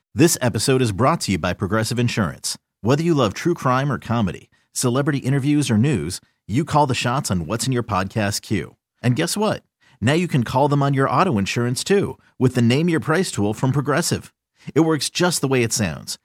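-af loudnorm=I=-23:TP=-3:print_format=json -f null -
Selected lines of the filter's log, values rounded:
"input_i" : "-20.2",
"input_tp" : "-2.8",
"input_lra" : "1.8",
"input_thresh" : "-30.4",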